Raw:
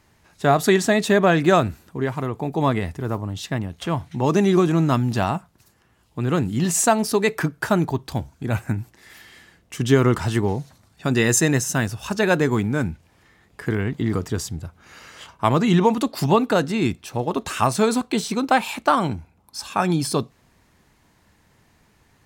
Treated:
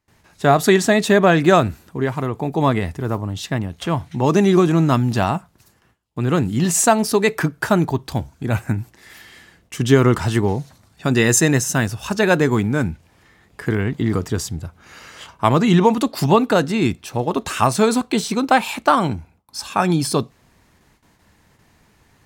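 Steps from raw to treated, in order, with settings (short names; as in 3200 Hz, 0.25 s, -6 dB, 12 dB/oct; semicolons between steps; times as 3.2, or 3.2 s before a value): gate with hold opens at -49 dBFS; gain +3 dB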